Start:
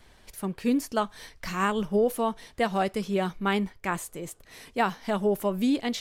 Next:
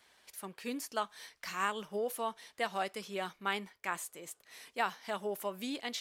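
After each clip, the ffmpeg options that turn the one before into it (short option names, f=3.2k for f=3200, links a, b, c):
-af "highpass=f=990:p=1,volume=-4dB"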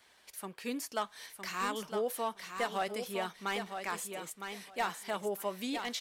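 -filter_complex "[0:a]acrossover=split=750|5900[a][b][c];[b]asoftclip=type=hard:threshold=-32.5dB[d];[a][d][c]amix=inputs=3:normalize=0,aecho=1:1:960|1920|2880:0.447|0.0715|0.0114,volume=1.5dB"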